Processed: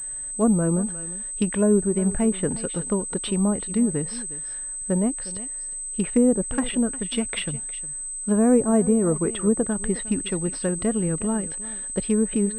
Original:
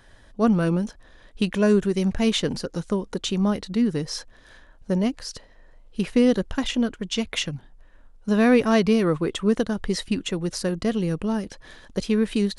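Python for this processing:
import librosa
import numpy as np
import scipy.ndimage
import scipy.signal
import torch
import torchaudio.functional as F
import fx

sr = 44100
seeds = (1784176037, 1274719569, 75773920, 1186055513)

y = x + 10.0 ** (-17.5 / 20.0) * np.pad(x, (int(359 * sr / 1000.0), 0))[:len(x)]
y = fx.env_lowpass_down(y, sr, base_hz=800.0, full_db=-16.0)
y = fx.pwm(y, sr, carrier_hz=8200.0)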